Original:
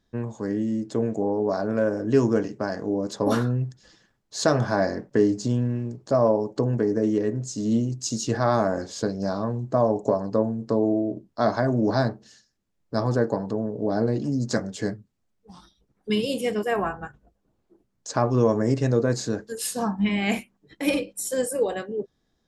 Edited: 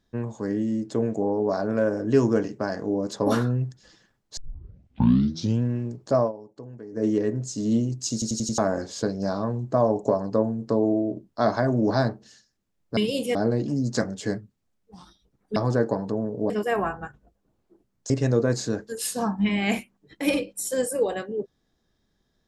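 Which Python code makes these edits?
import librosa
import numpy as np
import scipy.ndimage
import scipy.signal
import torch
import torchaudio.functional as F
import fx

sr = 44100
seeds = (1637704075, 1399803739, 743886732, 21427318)

y = fx.edit(x, sr, fx.tape_start(start_s=4.37, length_s=1.25),
    fx.fade_down_up(start_s=6.19, length_s=0.86, db=-17.5, fade_s=0.13),
    fx.stutter_over(start_s=8.13, slice_s=0.09, count=5),
    fx.swap(start_s=12.97, length_s=0.94, other_s=16.12, other_length_s=0.38),
    fx.cut(start_s=18.1, length_s=0.6), tone=tone)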